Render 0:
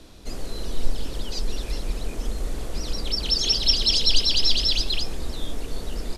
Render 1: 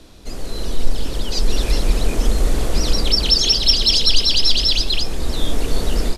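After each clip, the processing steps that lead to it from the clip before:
in parallel at −6 dB: soft clipping −14 dBFS, distortion −14 dB
on the sum: automatic gain control gain up to 11.5 dB
level −1 dB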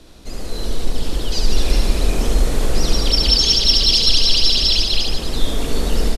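reverse bouncing-ball delay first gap 70 ms, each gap 1.15×, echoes 5
level −1 dB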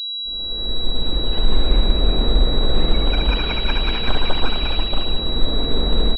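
fade in at the beginning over 1.18 s
high-frequency loss of the air 98 metres
switching amplifier with a slow clock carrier 3,900 Hz

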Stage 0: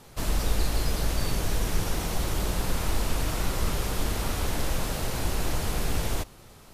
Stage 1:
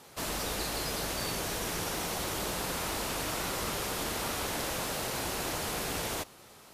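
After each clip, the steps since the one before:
high-pass filter 350 Hz 6 dB per octave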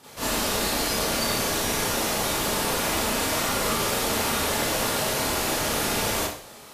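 four-comb reverb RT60 0.46 s, combs from 27 ms, DRR −8.5 dB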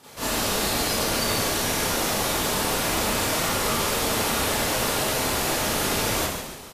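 echo with shifted repeats 138 ms, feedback 47%, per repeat −130 Hz, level −7 dB

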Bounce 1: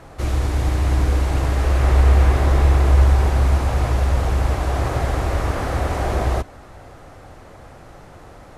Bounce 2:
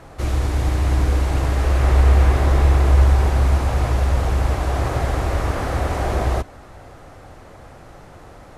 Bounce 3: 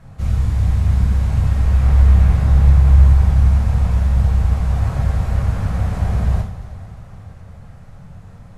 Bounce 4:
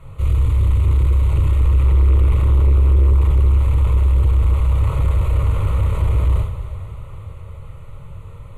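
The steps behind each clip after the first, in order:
no processing that can be heard
low shelf with overshoot 240 Hz +10 dB, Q 3; coupled-rooms reverb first 0.45 s, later 4.4 s, from −18 dB, DRR −1.5 dB; level −10 dB
soft clipping −14.5 dBFS, distortion −9 dB; phaser with its sweep stopped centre 1,100 Hz, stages 8; level +6 dB

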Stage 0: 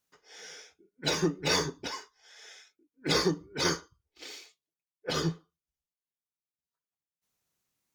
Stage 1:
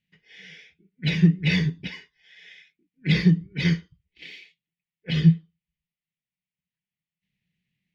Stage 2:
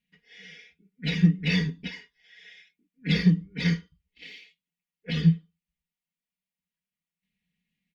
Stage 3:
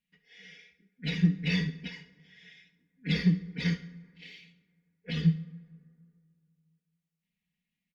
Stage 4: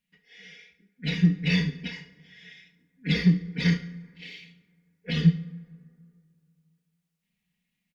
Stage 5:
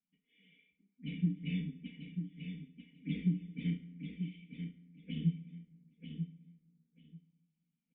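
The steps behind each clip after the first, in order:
drawn EQ curve 100 Hz 0 dB, 180 Hz +12 dB, 270 Hz −8 dB, 1,300 Hz −24 dB, 1,900 Hz +2 dB, 2,900 Hz +1 dB, 6,800 Hz −24 dB; level +6.5 dB
comb filter 4.2 ms, depth 90%; level −4 dB
repeating echo 69 ms, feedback 41%, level −16.5 dB; dense smooth reverb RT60 2.4 s, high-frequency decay 0.4×, DRR 17.5 dB; level −4.5 dB
in parallel at +1 dB: speech leveller 0.5 s; on the sum: double-tracking delay 34 ms −11 dB; level −2 dB
formant resonators in series i; repeating echo 940 ms, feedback 17%, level −7.5 dB; level −3 dB

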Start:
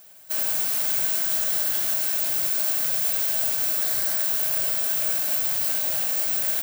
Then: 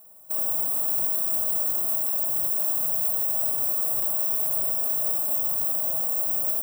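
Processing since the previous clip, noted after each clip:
Chebyshev band-stop filter 1,200–8,100 Hz, order 4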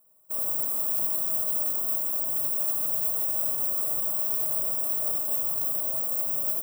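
notch comb filter 770 Hz
expander for the loud parts 1.5 to 1, over −45 dBFS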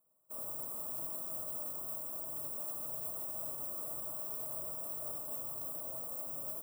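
high-shelf EQ 6,900 Hz −6.5 dB
level −8 dB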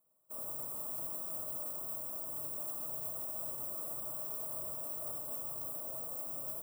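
feedback echo at a low word length 132 ms, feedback 55%, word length 10 bits, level −12 dB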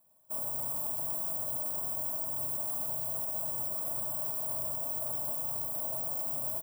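comb filter 1.2 ms, depth 50%
brickwall limiter −32 dBFS, peak gain reduction 6 dB
level +7.5 dB

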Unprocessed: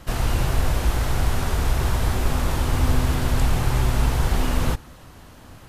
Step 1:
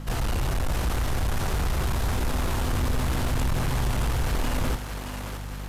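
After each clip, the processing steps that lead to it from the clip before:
mains hum 50 Hz, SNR 15 dB
soft clipping −21 dBFS, distortion −9 dB
on a send: feedback echo with a high-pass in the loop 623 ms, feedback 60%, high-pass 360 Hz, level −6 dB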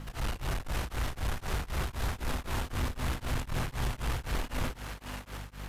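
parametric band 2,200 Hz +4 dB 2.2 octaves
surface crackle 440 per second −48 dBFS
tremolo along a rectified sine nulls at 3.9 Hz
level −5.5 dB

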